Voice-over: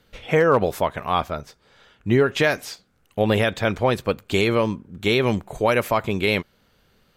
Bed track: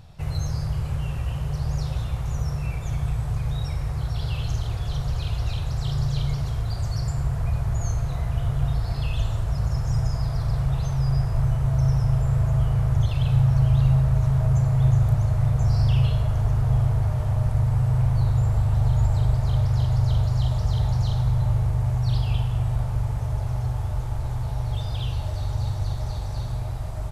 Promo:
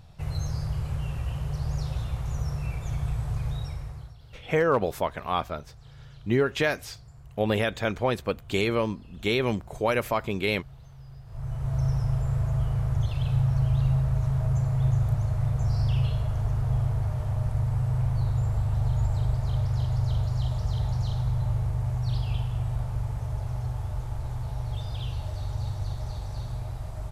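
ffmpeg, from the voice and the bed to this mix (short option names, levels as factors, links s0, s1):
-filter_complex "[0:a]adelay=4200,volume=0.531[s0];[1:a]volume=5.62,afade=t=out:st=3.46:d=0.71:silence=0.1,afade=t=in:st=11.25:d=0.53:silence=0.11885[s1];[s0][s1]amix=inputs=2:normalize=0"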